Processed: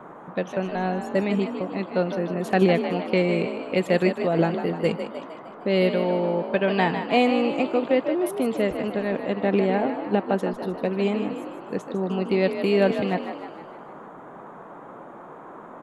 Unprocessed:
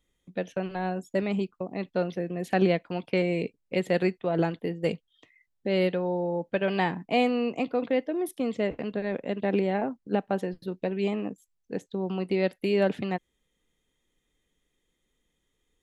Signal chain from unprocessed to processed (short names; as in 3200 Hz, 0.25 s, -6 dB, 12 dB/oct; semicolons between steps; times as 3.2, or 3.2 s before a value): frequency-shifting echo 0.153 s, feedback 55%, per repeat +45 Hz, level -9 dB; band noise 150–1200 Hz -46 dBFS; gain +4 dB